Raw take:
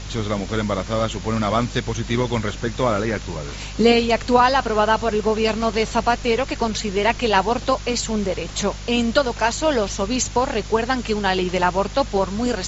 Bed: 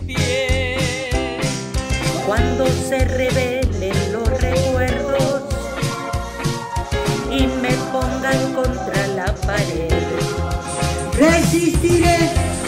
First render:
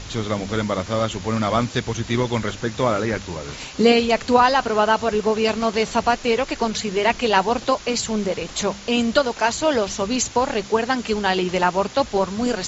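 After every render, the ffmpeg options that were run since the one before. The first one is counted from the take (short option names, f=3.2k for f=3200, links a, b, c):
-af "bandreject=f=50:t=h:w=4,bandreject=f=100:t=h:w=4,bandreject=f=150:t=h:w=4,bandreject=f=200:t=h:w=4"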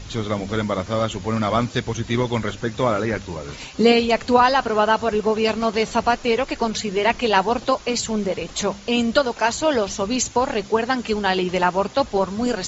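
-af "afftdn=nr=6:nf=-38"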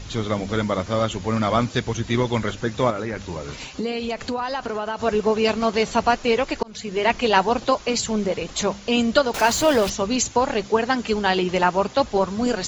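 -filter_complex "[0:a]asettb=1/sr,asplit=3[a][b][c];[a]atrim=end=2.904[d];[b]atrim=start=2.9:end=5,asetpts=PTS-STARTPTS,afade=t=in:d=0.004:c=qsin,afade=t=out:st=2.096:d=0.004:c=qsin,acompressor=threshold=-23dB:ratio=5:attack=3.2:release=140:knee=1:detection=peak[e];[c]atrim=start=4.996[f];[d][e]acrossfade=d=0.004:c1=hsin:c2=qsin[g];[g][f]acrossfade=d=0.004:c1=qsin:c2=hsin,asettb=1/sr,asplit=3[h][i][j];[h]atrim=end=9.344[k];[i]atrim=start=9.34:end=9.9,asetpts=PTS-STARTPTS,afade=t=in:d=0.004:c=qsin,afade=t=out:st=0.556:d=0.004:c=qsin,aeval=exprs='val(0)+0.5*0.0631*sgn(val(0))':c=same[l];[j]atrim=start=9.896[m];[k][l]acrossfade=d=0.004:c1=hsin:c2=qsin[n];[n][m]acrossfade=d=0.004:c1=qsin:c2=hsin,asplit=2[o][p];[o]atrim=end=6.63,asetpts=PTS-STARTPTS,afade=t=out:st=6.626:d=0.004:c=hsin[q];[p]atrim=start=6.63,asetpts=PTS-STARTPTS,afade=t=in:d=0.62:c=qsin[r];[q][r]concat=n=2:v=0:a=1"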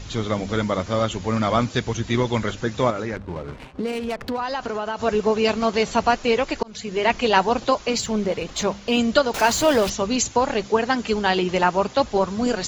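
-filter_complex "[0:a]asettb=1/sr,asplit=3[a][b][c];[a]atrim=end=3.164[d];[b]atrim=start=3.16:end=4.38,asetpts=PTS-STARTPTS,afade=t=in:d=0.004:c=qsin,afade=t=out:st=1.216:d=0.004:c=qsin,adynamicsmooth=sensitivity=4.5:basefreq=540[e];[c]atrim=start=4.376[f];[d][e]acrossfade=d=0.004:c1=hsin:c2=qsin[g];[g][f]acrossfade=d=0.004:c1=qsin:c2=hsin,asettb=1/sr,asplit=3[h][i][j];[h]atrim=end=7.974[k];[i]atrim=start=7.97:end=8.99,asetpts=PTS-STARTPTS,afade=t=in:d=0.004:c=qsin,afade=t=out:st=1.016:d=0.004:c=qsin,adynamicsmooth=sensitivity=6:basefreq=7.5k[l];[j]atrim=start=8.986[m];[k][l]acrossfade=d=0.004:c1=hsin:c2=qsin[n];[n][m]acrossfade=d=0.004:c1=qsin:c2=hsin"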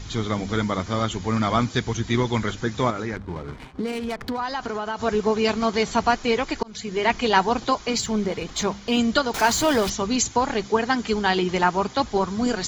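-af "equalizer=f=560:t=o:w=0.4:g=-7.5,bandreject=f=2.7k:w=11"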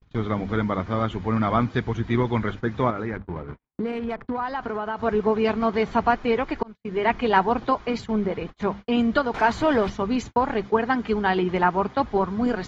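-af "lowpass=2.1k,agate=range=-48dB:threshold=-33dB:ratio=16:detection=peak"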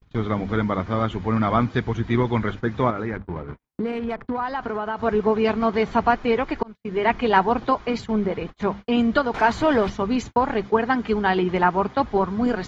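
-af "volume=1.5dB"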